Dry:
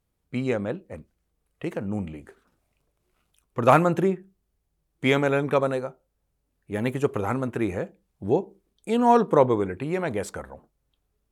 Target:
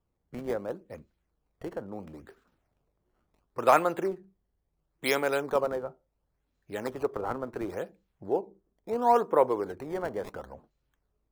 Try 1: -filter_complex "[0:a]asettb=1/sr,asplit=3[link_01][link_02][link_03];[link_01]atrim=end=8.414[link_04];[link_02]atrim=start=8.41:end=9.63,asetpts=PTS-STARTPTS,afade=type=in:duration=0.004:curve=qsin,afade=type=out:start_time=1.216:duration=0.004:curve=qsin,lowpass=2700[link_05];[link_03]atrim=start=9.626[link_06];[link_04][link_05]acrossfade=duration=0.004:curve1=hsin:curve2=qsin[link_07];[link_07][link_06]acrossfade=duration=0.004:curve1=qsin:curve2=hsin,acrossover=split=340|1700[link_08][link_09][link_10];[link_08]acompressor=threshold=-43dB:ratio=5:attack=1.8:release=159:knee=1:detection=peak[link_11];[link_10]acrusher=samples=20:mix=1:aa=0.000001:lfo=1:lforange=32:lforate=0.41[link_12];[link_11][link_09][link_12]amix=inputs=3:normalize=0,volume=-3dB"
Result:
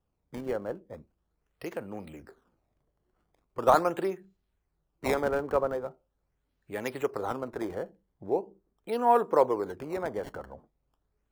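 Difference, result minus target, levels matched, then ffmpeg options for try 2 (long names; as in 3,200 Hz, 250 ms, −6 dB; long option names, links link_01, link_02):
sample-and-hold swept by an LFO: distortion +13 dB
-filter_complex "[0:a]asettb=1/sr,asplit=3[link_01][link_02][link_03];[link_01]atrim=end=8.414[link_04];[link_02]atrim=start=8.41:end=9.63,asetpts=PTS-STARTPTS,afade=type=in:duration=0.004:curve=qsin,afade=type=out:start_time=1.216:duration=0.004:curve=qsin,lowpass=2700[link_05];[link_03]atrim=start=9.626[link_06];[link_04][link_05]acrossfade=duration=0.004:curve1=hsin:curve2=qsin[link_07];[link_07][link_06]acrossfade=duration=0.004:curve1=qsin:curve2=hsin,acrossover=split=340|1700[link_08][link_09][link_10];[link_08]acompressor=threshold=-43dB:ratio=5:attack=1.8:release=159:knee=1:detection=peak[link_11];[link_10]acrusher=samples=20:mix=1:aa=0.000001:lfo=1:lforange=32:lforate=0.72[link_12];[link_11][link_09][link_12]amix=inputs=3:normalize=0,volume=-3dB"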